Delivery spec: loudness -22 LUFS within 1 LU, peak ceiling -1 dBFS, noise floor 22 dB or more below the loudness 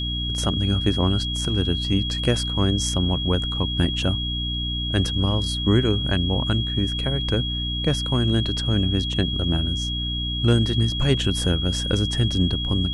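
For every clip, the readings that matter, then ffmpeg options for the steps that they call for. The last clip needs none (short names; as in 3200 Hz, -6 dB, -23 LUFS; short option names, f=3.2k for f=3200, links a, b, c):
hum 60 Hz; harmonics up to 300 Hz; hum level -26 dBFS; steady tone 3300 Hz; tone level -27 dBFS; loudness -22.5 LUFS; peak -5.5 dBFS; loudness target -22.0 LUFS
-> -af "bandreject=f=60:t=h:w=6,bandreject=f=120:t=h:w=6,bandreject=f=180:t=h:w=6,bandreject=f=240:t=h:w=6,bandreject=f=300:t=h:w=6"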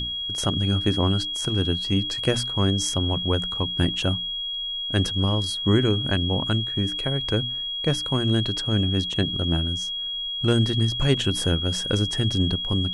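hum none; steady tone 3300 Hz; tone level -27 dBFS
-> -af "bandreject=f=3.3k:w=30"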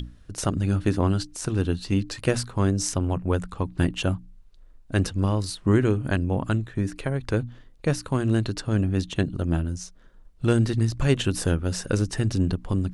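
steady tone none; loudness -25.5 LUFS; peak -6.5 dBFS; loudness target -22.0 LUFS
-> -af "volume=3.5dB"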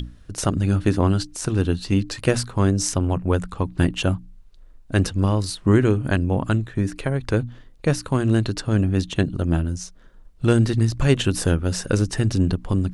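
loudness -22.0 LUFS; peak -3.0 dBFS; noise floor -47 dBFS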